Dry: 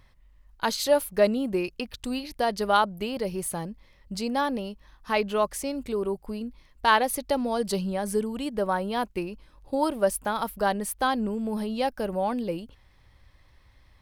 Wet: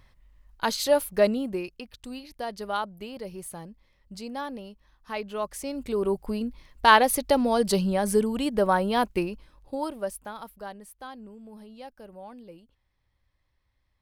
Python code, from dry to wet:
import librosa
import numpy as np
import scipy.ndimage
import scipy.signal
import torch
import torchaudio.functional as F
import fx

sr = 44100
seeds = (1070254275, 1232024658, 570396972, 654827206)

y = fx.gain(x, sr, db=fx.line((1.3, 0.0), (1.82, -8.0), (5.28, -8.0), (6.16, 4.0), (9.22, 4.0), (9.75, -5.0), (10.89, -16.5)))